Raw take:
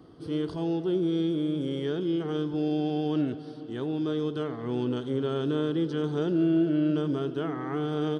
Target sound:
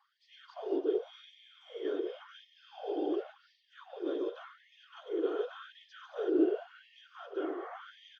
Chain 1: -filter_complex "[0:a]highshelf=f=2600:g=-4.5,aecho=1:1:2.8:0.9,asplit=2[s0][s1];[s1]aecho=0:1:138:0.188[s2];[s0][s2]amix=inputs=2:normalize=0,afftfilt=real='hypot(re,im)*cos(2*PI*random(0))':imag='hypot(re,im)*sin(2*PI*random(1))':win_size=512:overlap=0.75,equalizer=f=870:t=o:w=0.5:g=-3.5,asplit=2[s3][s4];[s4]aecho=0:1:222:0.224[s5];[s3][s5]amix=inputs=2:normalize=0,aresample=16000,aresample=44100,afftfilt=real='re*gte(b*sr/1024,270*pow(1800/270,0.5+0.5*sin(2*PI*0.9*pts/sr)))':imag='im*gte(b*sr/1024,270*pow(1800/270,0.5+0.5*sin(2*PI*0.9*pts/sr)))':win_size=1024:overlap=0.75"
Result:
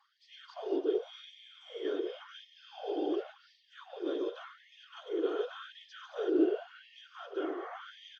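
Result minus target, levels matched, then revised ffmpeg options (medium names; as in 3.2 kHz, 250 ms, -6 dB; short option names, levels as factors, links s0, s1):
4 kHz band +4.0 dB
-filter_complex "[0:a]highshelf=f=2600:g=-11.5,aecho=1:1:2.8:0.9,asplit=2[s0][s1];[s1]aecho=0:1:138:0.188[s2];[s0][s2]amix=inputs=2:normalize=0,afftfilt=real='hypot(re,im)*cos(2*PI*random(0))':imag='hypot(re,im)*sin(2*PI*random(1))':win_size=512:overlap=0.75,equalizer=f=870:t=o:w=0.5:g=-3.5,asplit=2[s3][s4];[s4]aecho=0:1:222:0.224[s5];[s3][s5]amix=inputs=2:normalize=0,aresample=16000,aresample=44100,afftfilt=real='re*gte(b*sr/1024,270*pow(1800/270,0.5+0.5*sin(2*PI*0.9*pts/sr)))':imag='im*gte(b*sr/1024,270*pow(1800/270,0.5+0.5*sin(2*PI*0.9*pts/sr)))':win_size=1024:overlap=0.75"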